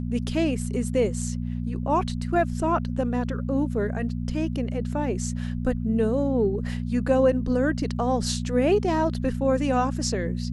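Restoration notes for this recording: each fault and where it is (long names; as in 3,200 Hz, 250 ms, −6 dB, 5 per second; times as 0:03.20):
mains hum 60 Hz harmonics 4 −29 dBFS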